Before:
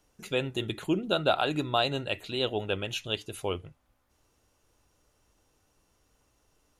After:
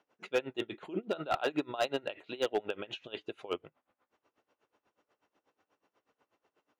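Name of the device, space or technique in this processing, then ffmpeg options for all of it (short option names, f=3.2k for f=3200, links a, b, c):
helicopter radio: -af "highpass=310,lowpass=2.5k,aeval=exprs='val(0)*pow(10,-22*(0.5-0.5*cos(2*PI*8.2*n/s))/20)':c=same,asoftclip=type=hard:threshold=-26.5dB,volume=4dB"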